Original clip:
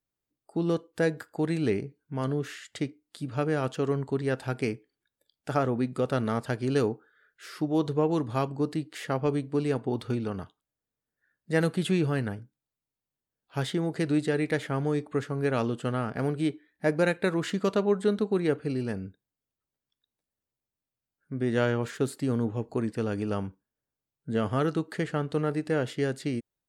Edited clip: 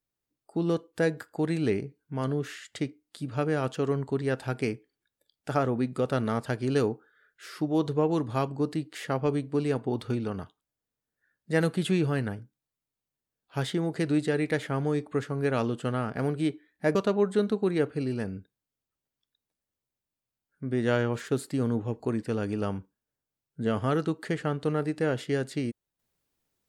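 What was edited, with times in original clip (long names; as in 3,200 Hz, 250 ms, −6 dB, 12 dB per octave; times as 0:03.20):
0:16.95–0:17.64: remove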